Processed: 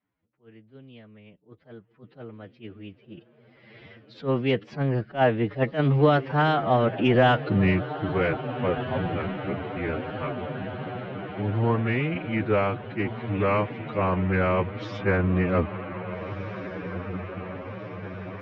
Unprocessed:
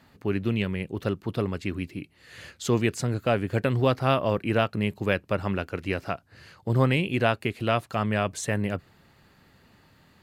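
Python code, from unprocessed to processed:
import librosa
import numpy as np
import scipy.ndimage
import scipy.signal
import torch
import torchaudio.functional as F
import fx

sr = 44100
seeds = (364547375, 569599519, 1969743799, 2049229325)

p1 = fx.doppler_pass(x, sr, speed_mps=43, closest_m=4.3, pass_at_s=4.14)
p2 = fx.recorder_agc(p1, sr, target_db=-16.0, rise_db_per_s=7.1, max_gain_db=30)
p3 = scipy.signal.sosfilt(scipy.signal.bessel(8, 2300.0, 'lowpass', norm='mag', fs=sr, output='sos'), p2)
p4 = p3 + fx.echo_diffused(p3, sr, ms=949, feedback_pct=67, wet_db=-11, dry=0)
p5 = fx.wow_flutter(p4, sr, seeds[0], rate_hz=2.1, depth_cents=25.0)
p6 = 10.0 ** (-23.0 / 20.0) * np.tanh(p5 / 10.0 ** (-23.0 / 20.0))
p7 = p5 + (p6 * 10.0 ** (-9.5 / 20.0))
p8 = fx.stretch_vocoder(p7, sr, factor=1.8)
p9 = fx.hpss(p8, sr, part='percussive', gain_db=5)
p10 = fx.attack_slew(p9, sr, db_per_s=260.0)
y = p10 * 10.0 ** (4.5 / 20.0)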